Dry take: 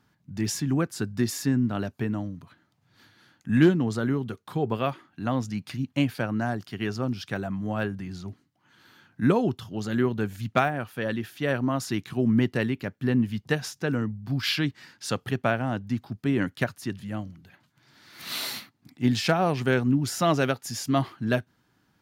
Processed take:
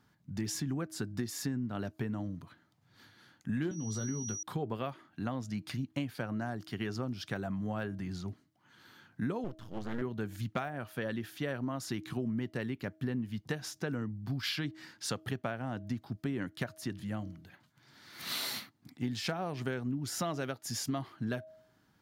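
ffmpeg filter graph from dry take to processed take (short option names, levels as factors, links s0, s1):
-filter_complex "[0:a]asettb=1/sr,asplit=3[s0][s1][s2];[s0]atrim=end=3.714[s3];[s1]atrim=start=3.71:end=4.43,asetpts=PTS-STARTPTS,afade=t=in:d=0.004:c=qsin,afade=t=out:st=0.716:d=0.004:c=qsin,aeval=exprs='val(0)+0.0141*sin(2*PI*5800*n/s)':c=same,acrossover=split=250|3000[s4][s5][s6];[s5]acompressor=threshold=0.01:ratio=2.5:attack=3.2:release=140:knee=2.83:detection=peak[s7];[s4][s7][s6]amix=inputs=3:normalize=0,asplit=2[s8][s9];[s9]adelay=19,volume=0.376[s10];[s8][s10]amix=inputs=2:normalize=0,atrim=end_sample=31752[s11];[s2]atrim=start=4.426[s12];[s3][s11]acrossfade=d=0.004:c1=hsin:c2=qsin[s13];[s13][s12]acrossfade=d=0.004:c1=qsin:c2=hsin,asettb=1/sr,asplit=3[s14][s15][s16];[s14]atrim=end=9.444[s17];[s15]atrim=start=9.44:end=10.02,asetpts=PTS-STARTPTS,afade=t=in:d=0.004:c=qsin,afade=t=out:st=0.576:d=0.004:c=qsin,acrossover=split=2600[s18][s19];[s19]acompressor=threshold=0.00178:ratio=4:attack=1:release=60[s20];[s18][s20]amix=inputs=2:normalize=0,aeval=exprs='max(val(0),0)':c=same[s21];[s16]atrim=start=10.016[s22];[s17][s21]acrossfade=d=0.004:c1=hsin:c2=qsin[s23];[s23][s22]acrossfade=d=0.004:c1=qsin:c2=hsin,equalizer=f=2600:t=o:w=0.22:g=-3,bandreject=f=316.7:t=h:w=4,bandreject=f=633.4:t=h:w=4,acompressor=threshold=0.0316:ratio=6,volume=0.794"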